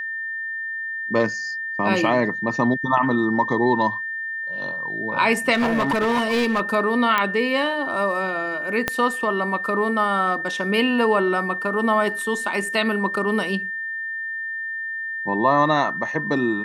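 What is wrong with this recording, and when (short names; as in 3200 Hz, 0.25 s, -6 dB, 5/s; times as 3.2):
tone 1800 Hz -26 dBFS
5.54–6.61 clipped -16.5 dBFS
7.18 pop -7 dBFS
8.88 pop -5 dBFS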